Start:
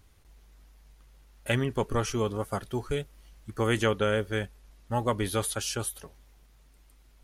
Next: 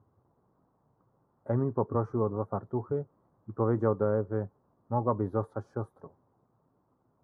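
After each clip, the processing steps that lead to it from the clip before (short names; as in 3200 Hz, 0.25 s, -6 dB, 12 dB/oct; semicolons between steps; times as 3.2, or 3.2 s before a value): elliptic band-pass 100–1100 Hz, stop band 40 dB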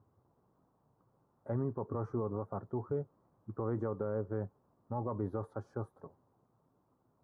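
limiter -23 dBFS, peak gain reduction 10 dB; gain -2.5 dB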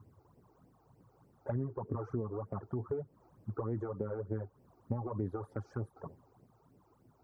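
compressor 6:1, threshold -42 dBFS, peak gain reduction 11.5 dB; phaser stages 12, 3.3 Hz, lowest notch 170–1300 Hz; gain +10.5 dB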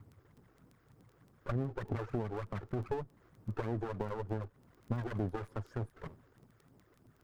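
minimum comb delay 0.59 ms; crackle 11/s -49 dBFS; gain +2 dB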